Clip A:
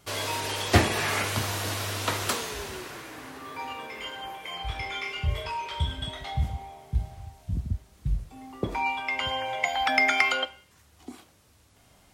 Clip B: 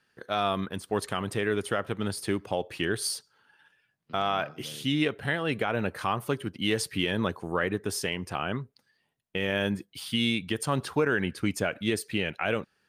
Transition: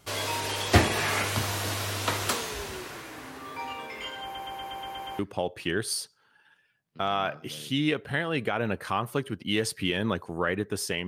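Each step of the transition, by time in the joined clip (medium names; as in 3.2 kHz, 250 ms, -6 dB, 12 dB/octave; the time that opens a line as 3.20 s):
clip A
4.23 s: stutter in place 0.12 s, 8 plays
5.19 s: go over to clip B from 2.33 s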